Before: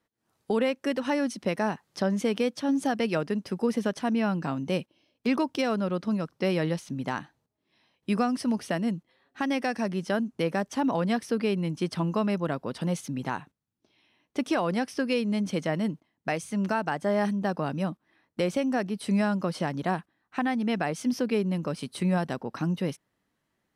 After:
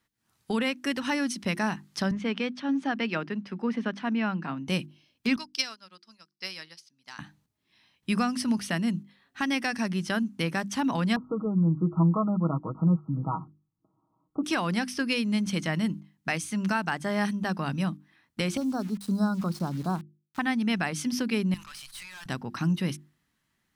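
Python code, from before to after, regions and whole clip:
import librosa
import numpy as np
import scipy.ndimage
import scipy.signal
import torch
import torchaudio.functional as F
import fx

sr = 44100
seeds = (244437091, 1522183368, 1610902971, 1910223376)

y = fx.chain(x, sr, fx.bandpass_edges(low_hz=200.0, high_hz=2900.0),
    fx.band_widen(depth_pct=40), at=(2.11, 4.68))
y = fx.chain(y, sr, fx.highpass(hz=1400.0, slope=6),
    fx.peak_eq(hz=4900.0, db=14.0, octaves=0.42),
    fx.upward_expand(threshold_db=-44.0, expansion=2.5), at=(5.36, 7.19))
y = fx.chain(y, sr, fx.brickwall_lowpass(high_hz=1400.0),
    fx.comb(ms=6.3, depth=0.74), at=(11.16, 14.44))
y = fx.chain(y, sr, fx.ellip_bandstop(low_hz=1400.0, high_hz=4000.0, order=3, stop_db=40),
    fx.high_shelf(hz=2200.0, db=-7.0),
    fx.sample_gate(floor_db=-45.5), at=(18.57, 20.39))
y = fx.chain(y, sr, fx.highpass(hz=1000.0, slope=24),
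    fx.tube_stage(drive_db=44.0, bias=0.8),
    fx.sustainer(db_per_s=24.0), at=(21.54, 22.26))
y = fx.peak_eq(y, sr, hz=520.0, db=-13.0, octaves=1.6)
y = fx.hum_notches(y, sr, base_hz=50, count=7)
y = F.gain(torch.from_numpy(y), 5.5).numpy()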